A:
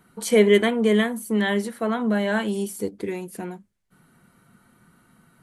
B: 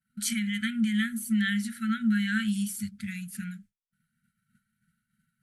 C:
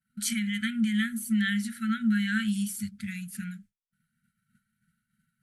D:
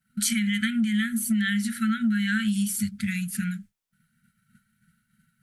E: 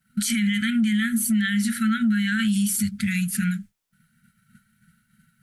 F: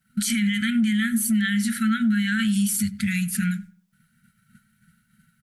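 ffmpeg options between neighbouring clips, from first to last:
ffmpeg -i in.wav -af "agate=range=-33dB:threshold=-45dB:ratio=3:detection=peak,alimiter=limit=-16dB:level=0:latency=1:release=187,afftfilt=real='re*(1-between(b*sr/4096,240,1300))':imag='im*(1-between(b*sr/4096,240,1300))':win_size=4096:overlap=0.75" out.wav
ffmpeg -i in.wav -af anull out.wav
ffmpeg -i in.wav -af "acompressor=threshold=-30dB:ratio=6,volume=8.5dB" out.wav
ffmpeg -i in.wav -af "alimiter=limit=-21dB:level=0:latency=1:release=21,volume=5.5dB" out.wav
ffmpeg -i in.wav -filter_complex "[0:a]asplit=2[link_01][link_02];[link_02]adelay=96,lowpass=frequency=1900:poles=1,volume=-19dB,asplit=2[link_03][link_04];[link_04]adelay=96,lowpass=frequency=1900:poles=1,volume=0.31,asplit=2[link_05][link_06];[link_06]adelay=96,lowpass=frequency=1900:poles=1,volume=0.31[link_07];[link_01][link_03][link_05][link_07]amix=inputs=4:normalize=0" out.wav

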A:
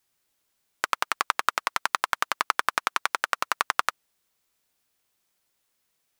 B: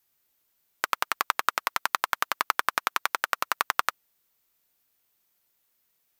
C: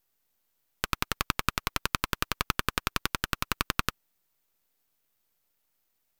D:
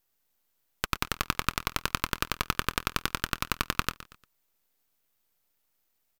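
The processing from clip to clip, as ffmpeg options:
ffmpeg -i in.wav -af "equalizer=frequency=14000:width=3.8:gain=14,volume=-1dB" out.wav
ffmpeg -i in.wav -af "aeval=exprs='max(val(0),0)':channel_layout=same" out.wav
ffmpeg -i in.wav -af "aecho=1:1:117|234|351:0.158|0.0586|0.0217" out.wav

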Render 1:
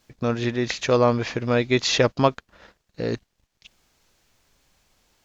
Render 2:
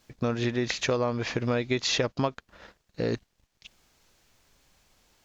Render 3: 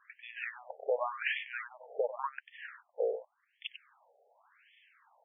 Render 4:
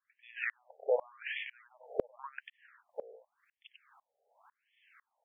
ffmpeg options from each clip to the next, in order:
ffmpeg -i in.wav -af "acompressor=threshold=-23dB:ratio=6" out.wav
ffmpeg -i in.wav -af "acompressor=threshold=-32dB:ratio=6,aecho=1:1:95:0.398,afftfilt=real='re*between(b*sr/1024,570*pow(2500/570,0.5+0.5*sin(2*PI*0.89*pts/sr))/1.41,570*pow(2500/570,0.5+0.5*sin(2*PI*0.89*pts/sr))*1.41)':imag='im*between(b*sr/1024,570*pow(2500/570,0.5+0.5*sin(2*PI*0.89*pts/sr))/1.41,570*pow(2500/570,0.5+0.5*sin(2*PI*0.89*pts/sr))*1.41)':win_size=1024:overlap=0.75,volume=8dB" out.wav
ffmpeg -i in.wav -af "aeval=exprs='val(0)*pow(10,-33*if(lt(mod(-2*n/s,1),2*abs(-2)/1000),1-mod(-2*n/s,1)/(2*abs(-2)/1000),(mod(-2*n/s,1)-2*abs(-2)/1000)/(1-2*abs(-2)/1000))/20)':channel_layout=same,volume=7dB" out.wav

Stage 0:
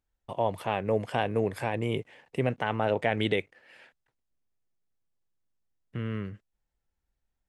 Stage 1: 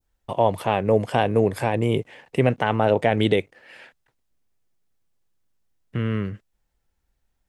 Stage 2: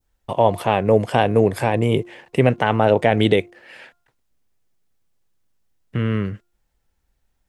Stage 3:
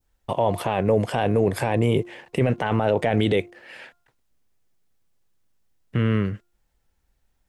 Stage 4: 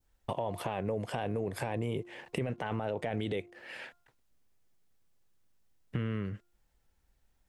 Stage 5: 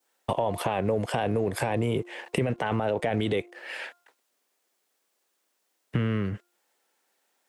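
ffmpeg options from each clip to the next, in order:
ffmpeg -i in.wav -af "adynamicequalizer=threshold=0.00631:dfrequency=2000:dqfactor=0.77:tfrequency=2000:tqfactor=0.77:attack=5:release=100:ratio=0.375:range=3.5:mode=cutabove:tftype=bell,volume=8.5dB" out.wav
ffmpeg -i in.wav -af "bandreject=frequency=351:width_type=h:width=4,bandreject=frequency=702:width_type=h:width=4,bandreject=frequency=1053:width_type=h:width=4,bandreject=frequency=1404:width_type=h:width=4,volume=3.5dB" out.wav
ffmpeg -i in.wav -af "alimiter=limit=-11dB:level=0:latency=1:release=12" out.wav
ffmpeg -i in.wav -af "acompressor=threshold=-30dB:ratio=4,volume=-2.5dB" out.wav
ffmpeg -i in.wav -filter_complex "[0:a]equalizer=frequency=8600:width_type=o:width=0.4:gain=2,acrossover=split=310|4200[link_01][link_02][link_03];[link_01]aeval=exprs='sgn(val(0))*max(abs(val(0))-0.00211,0)':channel_layout=same[link_04];[link_04][link_02][link_03]amix=inputs=3:normalize=0,volume=8dB" out.wav

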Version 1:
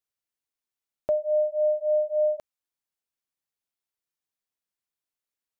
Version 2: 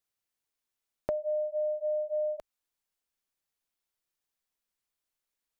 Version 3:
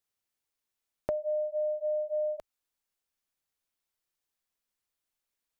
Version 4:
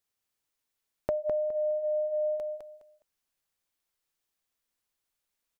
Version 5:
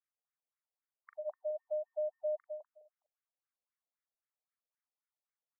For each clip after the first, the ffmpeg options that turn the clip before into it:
ffmpeg -i in.wav -af "asubboost=boost=3:cutoff=57,acompressor=threshold=-32dB:ratio=6,volume=2.5dB" out.wav
ffmpeg -i in.wav -af "equalizer=frequency=90:width=4:gain=2.5" out.wav
ffmpeg -i in.wav -af "aecho=1:1:207|414|621:0.531|0.127|0.0306,volume=1.5dB" out.wav
ffmpeg -i in.wav -filter_complex "[0:a]asplit=2[link_01][link_02];[link_02]adelay=41,volume=-8.5dB[link_03];[link_01][link_03]amix=inputs=2:normalize=0,afftfilt=real='re*between(b*sr/1024,560*pow(1700/560,0.5+0.5*sin(2*PI*3.8*pts/sr))/1.41,560*pow(1700/560,0.5+0.5*sin(2*PI*3.8*pts/sr))*1.41)':imag='im*between(b*sr/1024,560*pow(1700/560,0.5+0.5*sin(2*PI*3.8*pts/sr))/1.41,560*pow(1700/560,0.5+0.5*sin(2*PI*3.8*pts/sr))*1.41)':win_size=1024:overlap=0.75,volume=-7dB" out.wav

